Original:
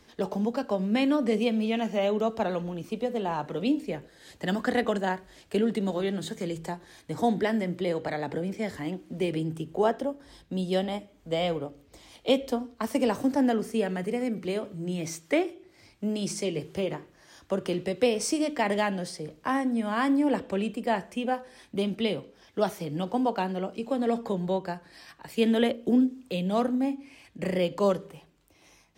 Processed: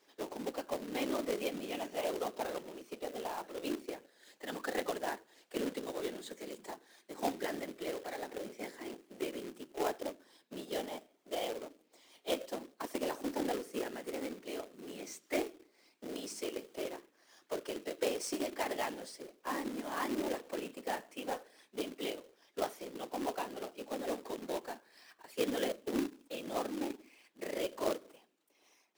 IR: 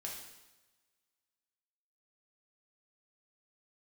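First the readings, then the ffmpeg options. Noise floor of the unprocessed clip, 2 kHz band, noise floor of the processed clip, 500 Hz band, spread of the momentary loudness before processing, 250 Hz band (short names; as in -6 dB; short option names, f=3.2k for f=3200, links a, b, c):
-60 dBFS, -8.5 dB, -72 dBFS, -10.0 dB, 10 LU, -14.0 dB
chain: -af "afftfilt=real='hypot(re,im)*cos(2*PI*random(0))':imag='hypot(re,im)*sin(2*PI*random(1))':win_size=512:overlap=0.75,highpass=f=270:w=0.5412,highpass=f=270:w=1.3066,acrusher=bits=2:mode=log:mix=0:aa=0.000001,volume=-4dB"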